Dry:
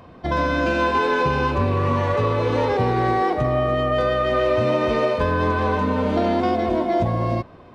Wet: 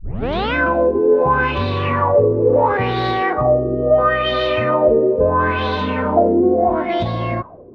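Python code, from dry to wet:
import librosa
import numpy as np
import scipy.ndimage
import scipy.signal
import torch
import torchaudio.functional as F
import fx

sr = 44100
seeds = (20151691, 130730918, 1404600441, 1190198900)

y = fx.tape_start_head(x, sr, length_s=0.54)
y = fx.filter_lfo_lowpass(y, sr, shape='sine', hz=0.74, low_hz=380.0, high_hz=3900.0, q=4.3)
y = fx.high_shelf(y, sr, hz=6200.0, db=12.0)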